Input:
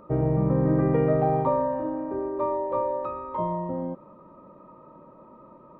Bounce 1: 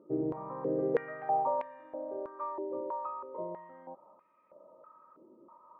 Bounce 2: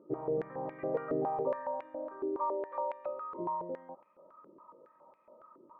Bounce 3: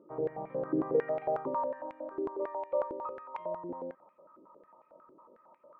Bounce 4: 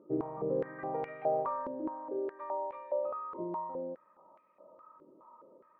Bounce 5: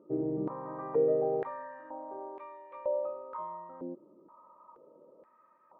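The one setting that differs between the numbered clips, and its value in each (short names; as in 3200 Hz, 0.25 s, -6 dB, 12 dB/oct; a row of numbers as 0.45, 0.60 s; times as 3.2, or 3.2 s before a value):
stepped band-pass, rate: 3.1, 7.2, 11, 4.8, 2.1 Hz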